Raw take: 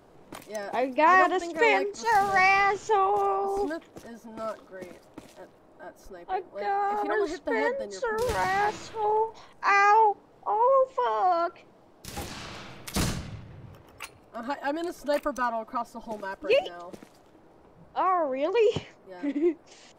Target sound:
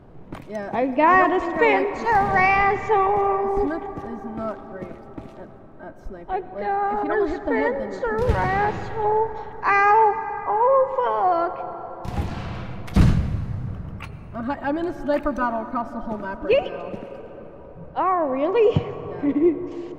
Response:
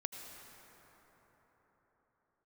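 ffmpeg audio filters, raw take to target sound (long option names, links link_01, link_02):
-filter_complex "[0:a]bass=frequency=250:gain=12,treble=frequency=4000:gain=-15,asplit=2[link_01][link_02];[1:a]atrim=start_sample=2205,asetrate=41895,aresample=44100[link_03];[link_02][link_03]afir=irnorm=-1:irlink=0,volume=-3dB[link_04];[link_01][link_04]amix=inputs=2:normalize=0"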